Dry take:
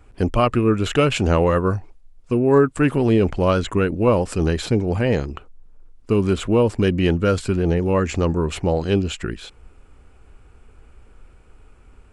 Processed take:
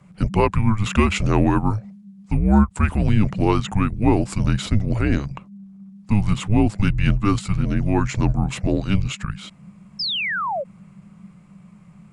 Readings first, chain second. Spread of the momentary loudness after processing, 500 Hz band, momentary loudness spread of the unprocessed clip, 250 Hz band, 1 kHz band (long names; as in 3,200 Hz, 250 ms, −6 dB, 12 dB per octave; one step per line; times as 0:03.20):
10 LU, −8.5 dB, 6 LU, 0.0 dB, 0.0 dB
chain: sound drawn into the spectrogram fall, 0:09.99–0:10.64, 710–5,600 Hz −24 dBFS
frequency shifter −210 Hz
every ending faded ahead of time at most 510 dB per second